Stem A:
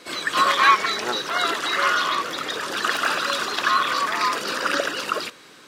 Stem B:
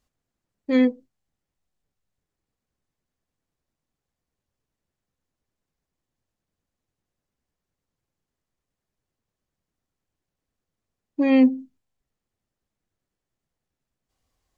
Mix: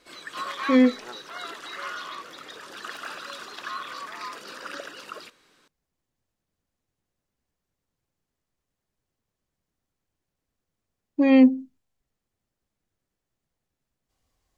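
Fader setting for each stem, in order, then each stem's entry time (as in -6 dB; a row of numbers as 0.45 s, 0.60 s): -14.5 dB, +1.0 dB; 0.00 s, 0.00 s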